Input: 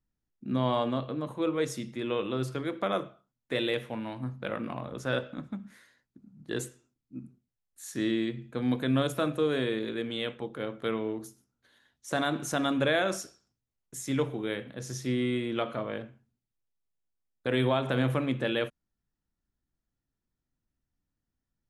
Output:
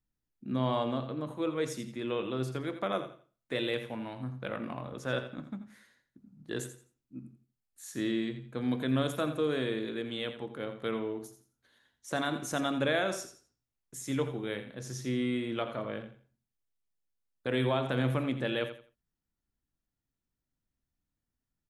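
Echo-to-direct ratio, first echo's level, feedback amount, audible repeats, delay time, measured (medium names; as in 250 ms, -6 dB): -10.5 dB, -11.0 dB, 26%, 3, 85 ms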